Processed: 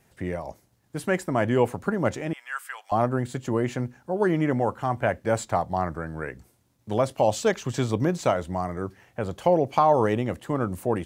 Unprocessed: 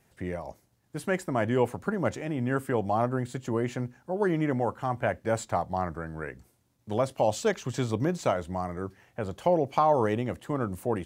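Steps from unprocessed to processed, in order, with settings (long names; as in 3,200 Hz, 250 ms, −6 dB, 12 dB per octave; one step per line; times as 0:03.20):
0:02.33–0:02.92: high-pass filter 1,200 Hz 24 dB per octave
level +3.5 dB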